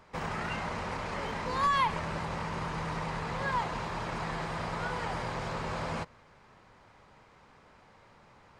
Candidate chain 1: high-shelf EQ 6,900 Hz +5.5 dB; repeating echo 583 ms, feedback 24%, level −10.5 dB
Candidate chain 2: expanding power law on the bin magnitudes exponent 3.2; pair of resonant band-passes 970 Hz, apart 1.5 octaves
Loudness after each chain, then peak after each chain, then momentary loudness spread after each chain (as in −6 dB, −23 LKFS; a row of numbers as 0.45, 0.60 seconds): −33.5, −46.5 LKFS; −17.0, −27.0 dBFS; 9, 21 LU